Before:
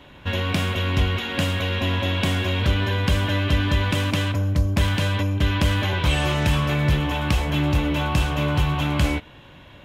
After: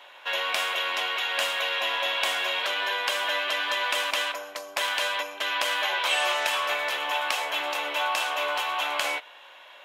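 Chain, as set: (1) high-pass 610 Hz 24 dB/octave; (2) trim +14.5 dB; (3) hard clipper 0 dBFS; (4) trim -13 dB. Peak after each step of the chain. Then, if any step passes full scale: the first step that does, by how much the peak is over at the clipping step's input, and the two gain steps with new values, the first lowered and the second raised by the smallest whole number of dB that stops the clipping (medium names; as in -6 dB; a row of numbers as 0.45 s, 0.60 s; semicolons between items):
-10.5 dBFS, +4.0 dBFS, 0.0 dBFS, -13.0 dBFS; step 2, 4.0 dB; step 2 +10.5 dB, step 4 -9 dB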